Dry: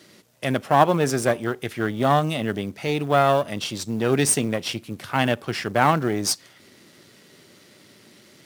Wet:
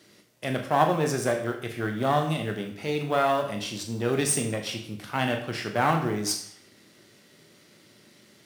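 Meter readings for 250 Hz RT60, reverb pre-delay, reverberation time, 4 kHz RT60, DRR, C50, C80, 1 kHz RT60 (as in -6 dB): 0.60 s, 20 ms, 0.60 s, 0.55 s, 3.5 dB, 8.0 dB, 11.5 dB, 0.55 s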